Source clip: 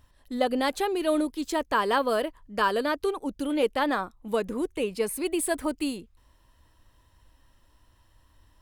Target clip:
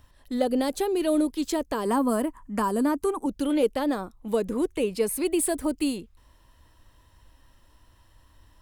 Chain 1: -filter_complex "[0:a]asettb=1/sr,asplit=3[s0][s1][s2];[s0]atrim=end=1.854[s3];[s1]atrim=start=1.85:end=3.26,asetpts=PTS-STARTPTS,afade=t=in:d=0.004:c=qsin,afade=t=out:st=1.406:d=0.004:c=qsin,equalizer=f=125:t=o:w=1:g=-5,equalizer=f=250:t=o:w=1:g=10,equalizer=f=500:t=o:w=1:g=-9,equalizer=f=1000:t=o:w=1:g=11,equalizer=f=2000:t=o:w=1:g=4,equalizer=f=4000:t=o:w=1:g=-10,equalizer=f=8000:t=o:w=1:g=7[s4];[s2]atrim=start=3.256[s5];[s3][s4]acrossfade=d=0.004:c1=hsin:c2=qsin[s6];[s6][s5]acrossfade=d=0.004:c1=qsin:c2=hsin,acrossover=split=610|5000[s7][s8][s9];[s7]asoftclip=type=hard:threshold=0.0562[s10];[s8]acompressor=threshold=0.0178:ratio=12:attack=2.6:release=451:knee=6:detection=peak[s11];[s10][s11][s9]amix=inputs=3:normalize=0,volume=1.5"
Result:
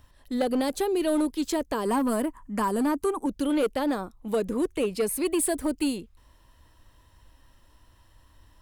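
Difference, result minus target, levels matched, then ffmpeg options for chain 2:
hard clipper: distortion +25 dB
-filter_complex "[0:a]asettb=1/sr,asplit=3[s0][s1][s2];[s0]atrim=end=1.854[s3];[s1]atrim=start=1.85:end=3.26,asetpts=PTS-STARTPTS,afade=t=in:d=0.004:c=qsin,afade=t=out:st=1.406:d=0.004:c=qsin,equalizer=f=125:t=o:w=1:g=-5,equalizer=f=250:t=o:w=1:g=10,equalizer=f=500:t=o:w=1:g=-9,equalizer=f=1000:t=o:w=1:g=11,equalizer=f=2000:t=o:w=1:g=4,equalizer=f=4000:t=o:w=1:g=-10,equalizer=f=8000:t=o:w=1:g=7[s4];[s2]atrim=start=3.256[s5];[s3][s4]acrossfade=d=0.004:c1=hsin:c2=qsin[s6];[s6][s5]acrossfade=d=0.004:c1=qsin:c2=hsin,acrossover=split=610|5000[s7][s8][s9];[s7]asoftclip=type=hard:threshold=0.119[s10];[s8]acompressor=threshold=0.0178:ratio=12:attack=2.6:release=451:knee=6:detection=peak[s11];[s10][s11][s9]amix=inputs=3:normalize=0,volume=1.5"

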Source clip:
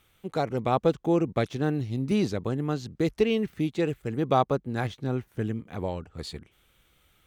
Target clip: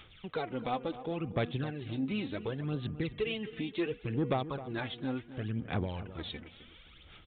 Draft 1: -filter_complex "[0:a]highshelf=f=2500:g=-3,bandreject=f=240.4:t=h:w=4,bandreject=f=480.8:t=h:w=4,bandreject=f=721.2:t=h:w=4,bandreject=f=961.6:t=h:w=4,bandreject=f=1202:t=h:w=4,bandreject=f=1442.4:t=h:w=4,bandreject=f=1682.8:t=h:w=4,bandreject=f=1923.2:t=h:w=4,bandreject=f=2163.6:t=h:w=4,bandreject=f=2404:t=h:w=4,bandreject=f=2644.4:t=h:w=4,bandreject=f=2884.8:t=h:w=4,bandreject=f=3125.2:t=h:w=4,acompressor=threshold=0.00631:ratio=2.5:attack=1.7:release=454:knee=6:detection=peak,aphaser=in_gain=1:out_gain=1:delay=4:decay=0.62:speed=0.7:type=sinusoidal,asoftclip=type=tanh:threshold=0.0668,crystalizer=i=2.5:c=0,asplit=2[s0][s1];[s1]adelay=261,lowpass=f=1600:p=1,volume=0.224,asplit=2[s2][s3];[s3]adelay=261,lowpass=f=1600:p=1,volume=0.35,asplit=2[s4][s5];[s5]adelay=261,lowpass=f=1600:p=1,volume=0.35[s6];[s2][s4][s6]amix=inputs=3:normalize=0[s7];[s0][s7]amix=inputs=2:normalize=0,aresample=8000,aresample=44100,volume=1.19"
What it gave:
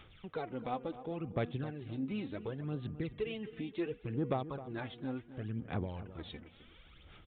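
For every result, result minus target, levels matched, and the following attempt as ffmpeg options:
4 kHz band -5.0 dB; compression: peak gain reduction +3.5 dB
-filter_complex "[0:a]highshelf=f=2500:g=6.5,bandreject=f=240.4:t=h:w=4,bandreject=f=480.8:t=h:w=4,bandreject=f=721.2:t=h:w=4,bandreject=f=961.6:t=h:w=4,bandreject=f=1202:t=h:w=4,bandreject=f=1442.4:t=h:w=4,bandreject=f=1682.8:t=h:w=4,bandreject=f=1923.2:t=h:w=4,bandreject=f=2163.6:t=h:w=4,bandreject=f=2404:t=h:w=4,bandreject=f=2644.4:t=h:w=4,bandreject=f=2884.8:t=h:w=4,bandreject=f=3125.2:t=h:w=4,acompressor=threshold=0.00631:ratio=2.5:attack=1.7:release=454:knee=6:detection=peak,aphaser=in_gain=1:out_gain=1:delay=4:decay=0.62:speed=0.7:type=sinusoidal,asoftclip=type=tanh:threshold=0.0668,crystalizer=i=2.5:c=0,asplit=2[s0][s1];[s1]adelay=261,lowpass=f=1600:p=1,volume=0.224,asplit=2[s2][s3];[s3]adelay=261,lowpass=f=1600:p=1,volume=0.35,asplit=2[s4][s5];[s5]adelay=261,lowpass=f=1600:p=1,volume=0.35[s6];[s2][s4][s6]amix=inputs=3:normalize=0[s7];[s0][s7]amix=inputs=2:normalize=0,aresample=8000,aresample=44100,volume=1.19"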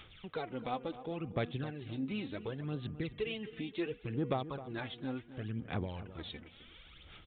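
compression: peak gain reduction +4 dB
-filter_complex "[0:a]highshelf=f=2500:g=6.5,bandreject=f=240.4:t=h:w=4,bandreject=f=480.8:t=h:w=4,bandreject=f=721.2:t=h:w=4,bandreject=f=961.6:t=h:w=4,bandreject=f=1202:t=h:w=4,bandreject=f=1442.4:t=h:w=4,bandreject=f=1682.8:t=h:w=4,bandreject=f=1923.2:t=h:w=4,bandreject=f=2163.6:t=h:w=4,bandreject=f=2404:t=h:w=4,bandreject=f=2644.4:t=h:w=4,bandreject=f=2884.8:t=h:w=4,bandreject=f=3125.2:t=h:w=4,acompressor=threshold=0.0141:ratio=2.5:attack=1.7:release=454:knee=6:detection=peak,aphaser=in_gain=1:out_gain=1:delay=4:decay=0.62:speed=0.7:type=sinusoidal,asoftclip=type=tanh:threshold=0.0668,crystalizer=i=2.5:c=0,asplit=2[s0][s1];[s1]adelay=261,lowpass=f=1600:p=1,volume=0.224,asplit=2[s2][s3];[s3]adelay=261,lowpass=f=1600:p=1,volume=0.35,asplit=2[s4][s5];[s5]adelay=261,lowpass=f=1600:p=1,volume=0.35[s6];[s2][s4][s6]amix=inputs=3:normalize=0[s7];[s0][s7]amix=inputs=2:normalize=0,aresample=8000,aresample=44100,volume=1.19"

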